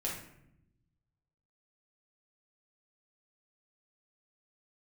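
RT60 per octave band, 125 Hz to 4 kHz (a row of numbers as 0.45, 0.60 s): 1.7, 1.3, 0.85, 0.70, 0.70, 0.50 s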